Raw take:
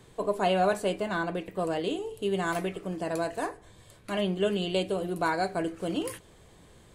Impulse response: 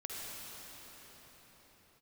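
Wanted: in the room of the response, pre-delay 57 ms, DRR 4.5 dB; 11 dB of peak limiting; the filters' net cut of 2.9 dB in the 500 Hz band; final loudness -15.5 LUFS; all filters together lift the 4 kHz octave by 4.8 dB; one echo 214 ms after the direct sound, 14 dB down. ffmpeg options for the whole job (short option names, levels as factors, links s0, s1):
-filter_complex "[0:a]equalizer=f=500:t=o:g=-4,equalizer=f=4000:t=o:g=7,alimiter=level_in=1.26:limit=0.0631:level=0:latency=1,volume=0.794,aecho=1:1:214:0.2,asplit=2[s0][s1];[1:a]atrim=start_sample=2205,adelay=57[s2];[s1][s2]afir=irnorm=-1:irlink=0,volume=0.501[s3];[s0][s3]amix=inputs=2:normalize=0,volume=9.44"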